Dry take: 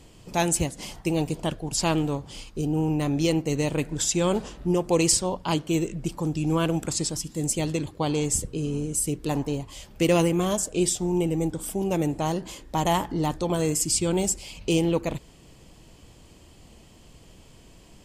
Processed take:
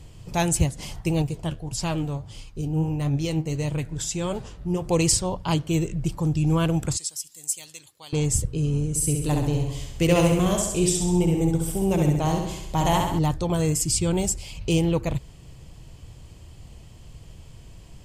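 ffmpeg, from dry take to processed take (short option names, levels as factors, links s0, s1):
-filter_complex "[0:a]asettb=1/sr,asplit=3[s0][s1][s2];[s0]atrim=end=1.224[s3];[s1]atrim=start=1.22:end=4.82,asetpts=PTS-STARTPTS,afade=t=in:d=0.004:c=qsin,afade=t=out:st=3.596:d=0.004:c=qsin,flanger=delay=6.2:depth=6.9:regen=63:speed=1.6:shape=triangular[s4];[s2]atrim=start=4.816[s5];[s3][s4]acrossfade=d=0.004:c1=hsin:c2=qsin[s6];[s6][s5]acrossfade=d=0.004:c1=qsin:c2=hsin,asettb=1/sr,asplit=3[s7][s8][s9];[s7]atrim=end=6.974[s10];[s8]atrim=start=6.97:end=8.13,asetpts=PTS-STARTPTS,afade=t=in:d=0.004:c=qsin,afade=t=out:st=1.156:d=0.004:c=qsin,aderivative[s11];[s9]atrim=start=8.126[s12];[s10][s11]acrossfade=d=0.004:c1=hsin:c2=qsin[s13];[s13][s12]acrossfade=d=0.004:c1=qsin:c2=hsin,asettb=1/sr,asplit=3[s14][s15][s16];[s14]atrim=end=8.894[s17];[s15]atrim=start=8.89:end=13.19,asetpts=PTS-STARTPTS,afade=t=in:d=0.004:c=qsin,afade=t=out:st=4.296:d=0.004:c=qsin,aecho=1:1:67|134|201|268|335|402|469:0.631|0.347|0.191|0.105|0.0577|0.0318|0.0175,atrim=end_sample=189630[s18];[s16]atrim=start=13.186[s19];[s17][s18]acrossfade=d=0.004:c1=hsin:c2=qsin[s20];[s20][s19]acrossfade=d=0.004:c1=qsin:c2=hsin,lowshelf=f=170:t=q:w=1.5:g=8"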